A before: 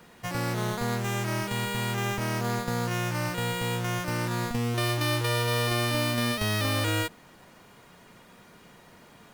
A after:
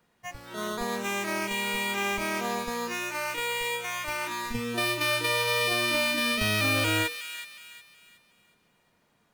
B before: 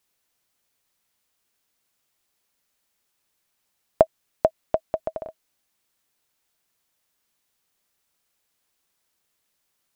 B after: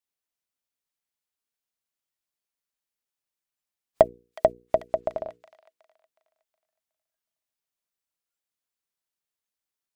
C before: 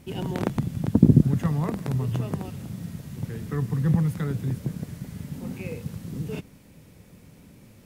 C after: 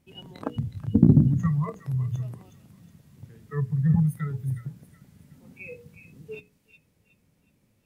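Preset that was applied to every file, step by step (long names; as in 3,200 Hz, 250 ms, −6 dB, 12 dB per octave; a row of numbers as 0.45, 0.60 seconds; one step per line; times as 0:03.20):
noise reduction from a noise print of the clip's start 18 dB
mains-hum notches 60/120/180/240/300/360/420/480 Hz
dynamic equaliser 2,400 Hz, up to +6 dB, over −49 dBFS, Q 5.2
in parallel at −7.5 dB: soft clipping −16.5 dBFS
on the sum: floating-point word with a short mantissa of 8 bits
on a send: delay with a high-pass on its return 367 ms, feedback 35%, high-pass 1,900 Hz, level −8.5 dB
on the sum: level −1 dB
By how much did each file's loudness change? +1.0, +0.5, +1.5 LU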